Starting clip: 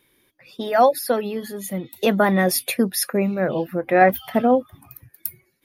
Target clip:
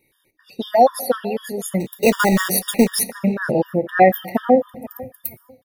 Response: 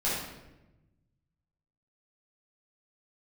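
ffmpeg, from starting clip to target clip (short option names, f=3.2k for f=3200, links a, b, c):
-filter_complex "[0:a]dynaudnorm=f=250:g=3:m=7dB,asettb=1/sr,asplit=3[a][b][c];[a]atrim=end=1.804[d];[b]atrim=start=1.8:end=3.04,asetpts=PTS-STARTPTS,afade=t=in:d=0.004:c=qsin,afade=t=out:st=1.236:d=0.004:c=qsin,acrusher=bits=2:mode=log:mix=0:aa=0.000001[e];[c]atrim=start=3.036[f];[d][e]acrossfade=d=0.004:c1=hsin:c2=qsin[g];[g][f]acrossfade=d=0.004:c1=qsin:c2=hsin,asplit=2[h][i];[i]adelay=478,lowpass=f=2.3k:p=1,volume=-19.5dB,asplit=2[j][k];[k]adelay=478,lowpass=f=2.3k:p=1,volume=0.28[l];[h][j][l]amix=inputs=3:normalize=0,asplit=2[m][n];[1:a]atrim=start_sample=2205[o];[n][o]afir=irnorm=-1:irlink=0,volume=-24dB[p];[m][p]amix=inputs=2:normalize=0,afftfilt=real='re*gt(sin(2*PI*4*pts/sr)*(1-2*mod(floor(b*sr/1024/940),2)),0)':imag='im*gt(sin(2*PI*4*pts/sr)*(1-2*mod(floor(b*sr/1024/940),2)),0)':win_size=1024:overlap=0.75"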